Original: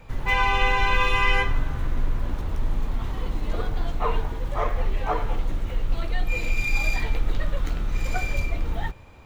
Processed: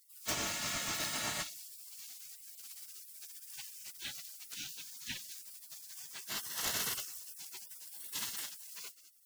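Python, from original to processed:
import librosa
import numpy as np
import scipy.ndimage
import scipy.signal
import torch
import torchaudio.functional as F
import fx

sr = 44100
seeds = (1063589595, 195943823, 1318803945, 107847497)

y = fx.highpass(x, sr, hz=78.0, slope=6)
y = fx.bass_treble(y, sr, bass_db=-15, treble_db=6)
y = fx.echo_feedback(y, sr, ms=205, feedback_pct=20, wet_db=-15.0)
y = fx.spec_gate(y, sr, threshold_db=-30, keep='weak')
y = F.gain(torch.from_numpy(y), 7.0).numpy()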